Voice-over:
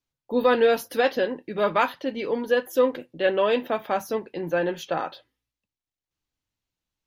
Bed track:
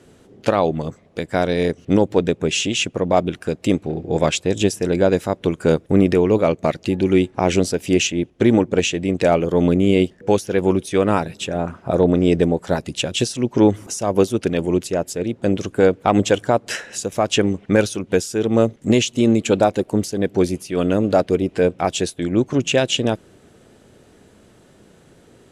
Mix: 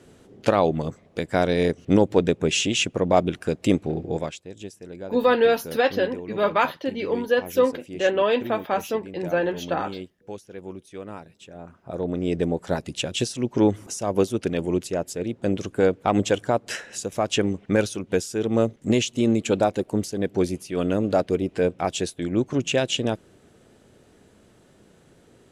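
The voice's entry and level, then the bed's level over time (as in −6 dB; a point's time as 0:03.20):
4.80 s, +1.0 dB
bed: 0:04.05 −2 dB
0:04.40 −20 dB
0:11.44 −20 dB
0:12.60 −5 dB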